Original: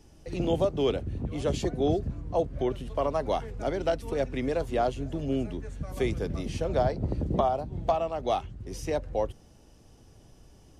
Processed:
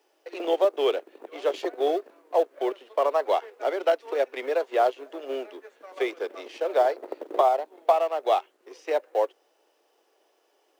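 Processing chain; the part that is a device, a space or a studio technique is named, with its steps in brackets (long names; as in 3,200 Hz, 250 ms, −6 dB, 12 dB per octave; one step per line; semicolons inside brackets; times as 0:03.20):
phone line with mismatched companding (band-pass filter 370–3,500 Hz; mu-law and A-law mismatch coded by A)
Butterworth high-pass 350 Hz 36 dB per octave
level +6.5 dB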